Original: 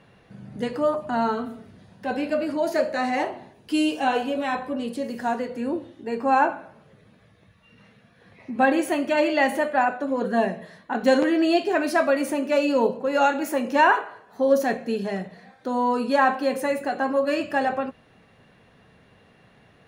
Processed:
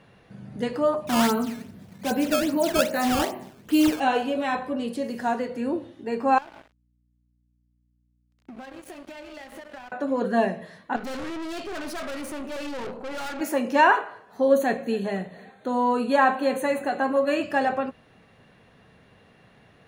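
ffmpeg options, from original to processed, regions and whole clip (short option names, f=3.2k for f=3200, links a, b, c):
-filter_complex "[0:a]asettb=1/sr,asplit=3[a][b][c];[a]atrim=end=1.074[d];[b]atrim=start=1.07:end=4,asetpts=PTS-STARTPTS,afade=t=in:d=0.004:c=qsin,afade=t=out:st=2.926:d=0.004:c=qsin,equalizer=f=200:t=o:w=1.2:g=6.5,acrusher=samples=13:mix=1:aa=0.000001:lfo=1:lforange=20.8:lforate=2.5,bandreject=f=128.4:t=h:w=4,bandreject=f=256.8:t=h:w=4,bandreject=f=385.2:t=h:w=4,bandreject=f=513.6:t=h:w=4,bandreject=f=642:t=h:w=4,bandreject=f=770.4:t=h:w=4,bandreject=f=898.8:t=h:w=4,bandreject=f=1.0272k:t=h:w=4,bandreject=f=1.1556k:t=h:w=4,bandreject=f=1.284k:t=h:w=4,bandreject=f=1.4124k:t=h:w=4,bandreject=f=1.5408k:t=h:w=4,bandreject=f=1.6692k:t=h:w=4,bandreject=f=1.7976k:t=h:w=4,bandreject=f=1.926k:t=h:w=4,bandreject=f=2.0544k:t=h:w=4,bandreject=f=2.1828k:t=h:w=4,bandreject=f=2.3112k:t=h:w=4,bandreject=f=2.4396k:t=h:w=4,bandreject=f=2.568k:t=h:w=4,bandreject=f=2.6964k:t=h:w=4,bandreject=f=2.8248k:t=h:w=4,bandreject=f=2.9532k:t=h:w=4,bandreject=f=3.0816k:t=h:w=4[e];[c]atrim=start=3.996[f];[d][e]acrossfade=d=0.004:c1=hsin:c2=qsin[g];[g][f]acrossfade=d=0.004:c1=qsin:c2=hsin,asettb=1/sr,asplit=3[h][i][j];[h]atrim=end=6.384[k];[i]atrim=start=6.38:end=9.92,asetpts=PTS-STARTPTS,afade=t=in:d=0.004:c=qsin,afade=t=out:st=3.536:d=0.004:c=qsin,acompressor=threshold=-33dB:ratio=20:attack=3.2:release=140:knee=1:detection=peak,aeval=exprs='sgn(val(0))*max(abs(val(0))-0.00841,0)':c=same,aeval=exprs='val(0)+0.000447*(sin(2*PI*60*n/s)+sin(2*PI*2*60*n/s)/2+sin(2*PI*3*60*n/s)/3+sin(2*PI*4*60*n/s)/4+sin(2*PI*5*60*n/s)/5)':c=same[l];[j]atrim=start=9.916[m];[k][l]acrossfade=d=0.004:c1=hsin:c2=qsin[n];[n][m]acrossfade=d=0.004:c1=qsin:c2=hsin,asettb=1/sr,asplit=3[o][p][q];[o]atrim=end=10.964[r];[p]atrim=start=10.96:end=13.41,asetpts=PTS-STARTPTS,afade=t=in:d=0.004:c=qsin,afade=t=out:st=2.446:d=0.004:c=qsin,equalizer=f=1.3k:w=4.8:g=7,aeval=exprs='(tanh(39.8*val(0)+0.55)-tanh(0.55))/39.8':c=same[s];[q]atrim=start=13.406[t];[r][s]acrossfade=d=0.004:c1=hsin:c2=qsin[u];[u][t]acrossfade=d=0.004:c1=qsin:c2=hsin,asettb=1/sr,asplit=3[v][w][x];[v]atrim=end=14.484[y];[w]atrim=start=14.48:end=17.43,asetpts=PTS-STARTPTS,afade=t=in:d=0.004:c=qsin,afade=t=out:st=2.946:d=0.004:c=qsin,asuperstop=centerf=5200:order=12:qfactor=3,aecho=1:1:270|540|810:0.0708|0.0297|0.0125,atrim=end_sample=130095[z];[x]atrim=start=17.426[aa];[y][z]acrossfade=d=0.004:c1=hsin:c2=qsin[ab];[ab][aa]acrossfade=d=0.004:c1=qsin:c2=hsin"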